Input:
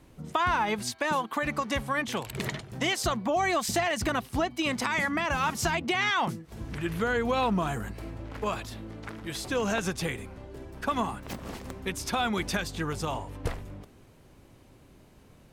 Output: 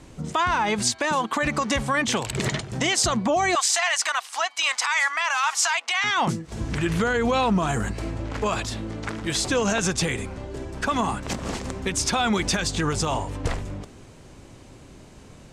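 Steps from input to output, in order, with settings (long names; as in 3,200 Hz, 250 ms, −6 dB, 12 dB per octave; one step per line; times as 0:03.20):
0:03.55–0:06.04: high-pass filter 870 Hz 24 dB per octave
brickwall limiter −23.5 dBFS, peak gain reduction 8.5 dB
low-pass with resonance 7,600 Hz, resonance Q 1.8
level +9 dB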